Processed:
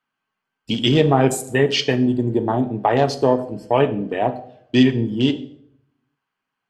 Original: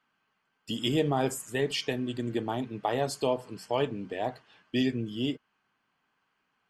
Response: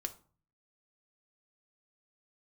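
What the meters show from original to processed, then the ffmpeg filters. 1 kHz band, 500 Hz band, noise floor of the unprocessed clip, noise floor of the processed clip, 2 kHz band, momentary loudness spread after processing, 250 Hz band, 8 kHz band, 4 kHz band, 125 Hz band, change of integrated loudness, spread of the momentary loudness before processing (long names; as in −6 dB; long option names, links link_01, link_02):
+11.5 dB, +11.5 dB, −77 dBFS, −81 dBFS, +11.0 dB, 7 LU, +12.5 dB, +8.5 dB, +10.5 dB, +13.5 dB, +12.0 dB, 7 LU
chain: -filter_complex "[0:a]afwtdn=0.00891,asplit=2[link_01][link_02];[1:a]atrim=start_sample=2205,asetrate=24696,aresample=44100[link_03];[link_02][link_03]afir=irnorm=-1:irlink=0,volume=4.5dB[link_04];[link_01][link_04]amix=inputs=2:normalize=0,volume=2dB"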